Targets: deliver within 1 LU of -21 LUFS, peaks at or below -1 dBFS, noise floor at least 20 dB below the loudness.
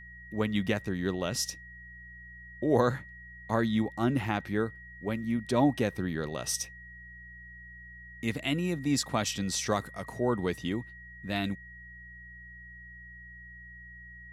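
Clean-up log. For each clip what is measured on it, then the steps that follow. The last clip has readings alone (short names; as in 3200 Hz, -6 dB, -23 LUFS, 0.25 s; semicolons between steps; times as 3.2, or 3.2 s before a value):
hum 60 Hz; harmonics up to 180 Hz; hum level -50 dBFS; steady tone 1900 Hz; tone level -47 dBFS; loudness -31.0 LUFS; peak -11.0 dBFS; loudness target -21.0 LUFS
-> de-hum 60 Hz, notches 3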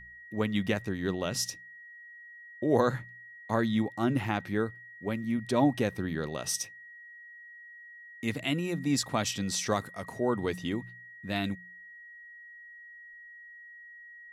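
hum none; steady tone 1900 Hz; tone level -47 dBFS
-> notch 1900 Hz, Q 30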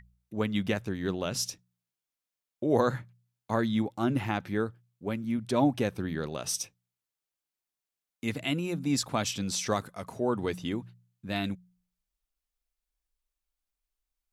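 steady tone none; loudness -31.0 LUFS; peak -11.5 dBFS; loudness target -21.0 LUFS
-> gain +10 dB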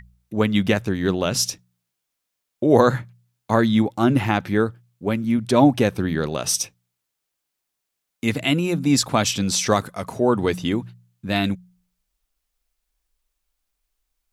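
loudness -21.0 LUFS; peak -1.5 dBFS; noise floor -80 dBFS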